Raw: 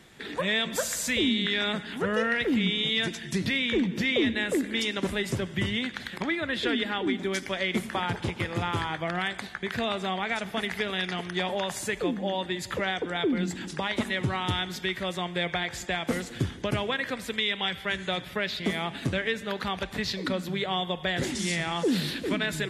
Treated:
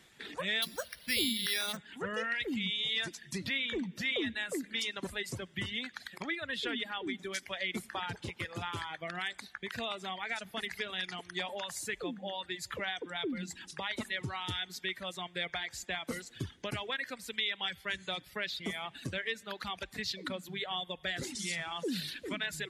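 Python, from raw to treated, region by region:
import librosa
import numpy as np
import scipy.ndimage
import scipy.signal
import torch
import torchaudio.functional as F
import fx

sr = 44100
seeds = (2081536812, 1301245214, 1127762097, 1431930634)

y = fx.chain(x, sr, fx.bass_treble(bass_db=1, treble_db=14),
    fx.resample_bad(factor=6, down='filtered', up='hold'), at=(0.62, 1.77))
y = fx.dereverb_blind(y, sr, rt60_s=1.5)
y = fx.tilt_shelf(y, sr, db=-3.5, hz=1200.0)
y = y * 10.0 ** (-7.0 / 20.0)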